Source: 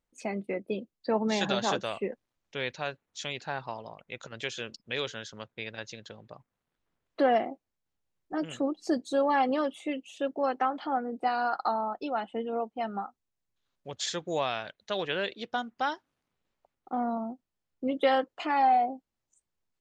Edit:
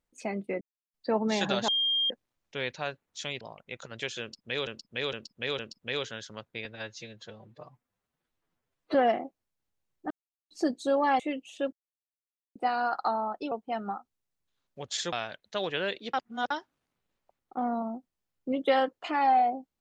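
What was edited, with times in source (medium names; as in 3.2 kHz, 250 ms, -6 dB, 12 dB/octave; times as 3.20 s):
0.61–0.94 s: mute
1.68–2.10 s: bleep 3.21 kHz -24 dBFS
3.41–3.82 s: delete
4.62–5.08 s: loop, 4 plays
5.68–7.21 s: stretch 1.5×
8.37–8.77 s: mute
9.46–9.80 s: delete
10.33–11.16 s: mute
12.12–12.60 s: delete
14.21–14.48 s: delete
15.49–15.86 s: reverse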